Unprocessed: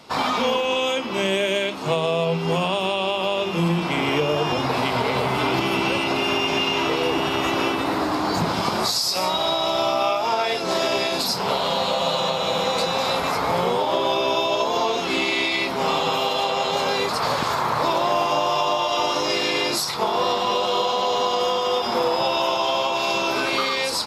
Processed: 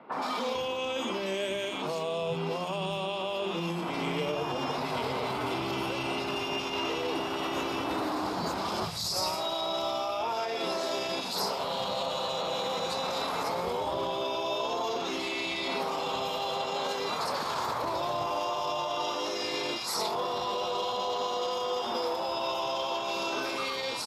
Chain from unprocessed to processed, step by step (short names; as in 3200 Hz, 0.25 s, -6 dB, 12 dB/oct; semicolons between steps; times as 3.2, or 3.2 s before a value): limiter -20 dBFS, peak gain reduction 11.5 dB; 8.76–9.3 crackle 42/s -> 100/s -41 dBFS; three bands offset in time mids, highs, lows 0.12/0.45 s, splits 160/2100 Hz; gain -2.5 dB